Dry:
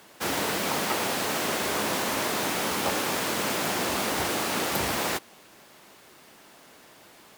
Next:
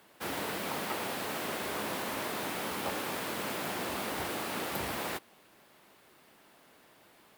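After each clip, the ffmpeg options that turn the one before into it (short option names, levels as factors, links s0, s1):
-af "equalizer=f=6300:t=o:w=0.96:g=-6,volume=0.422"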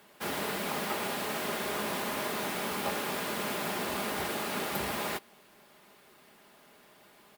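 -af "aecho=1:1:4.9:0.37,volume=1.19"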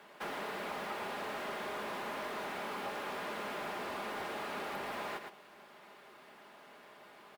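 -filter_complex "[0:a]aecho=1:1:112:0.266,acrossover=split=170|2500[s0][s1][s2];[s0]acompressor=threshold=0.00126:ratio=4[s3];[s1]acompressor=threshold=0.01:ratio=4[s4];[s2]acompressor=threshold=0.00501:ratio=4[s5];[s3][s4][s5]amix=inputs=3:normalize=0,asplit=2[s6][s7];[s7]highpass=f=720:p=1,volume=4.47,asoftclip=type=tanh:threshold=0.0473[s8];[s6][s8]amix=inputs=2:normalize=0,lowpass=f=1500:p=1,volume=0.501,volume=0.891"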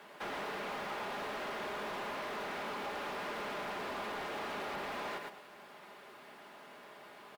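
-filter_complex "[0:a]acrossover=split=180|5500[s0][s1][s2];[s2]alimiter=level_in=35.5:limit=0.0631:level=0:latency=1,volume=0.0282[s3];[s0][s1][s3]amix=inputs=3:normalize=0,asoftclip=type=tanh:threshold=0.0133,asplit=2[s4][s5];[s5]adelay=105,volume=0.282,highshelf=f=4000:g=-2.36[s6];[s4][s6]amix=inputs=2:normalize=0,volume=1.33"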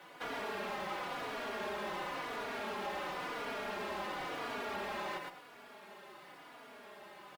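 -filter_complex "[0:a]asplit=2[s0][s1];[s1]adelay=3.5,afreqshift=-0.95[s2];[s0][s2]amix=inputs=2:normalize=1,volume=1.41"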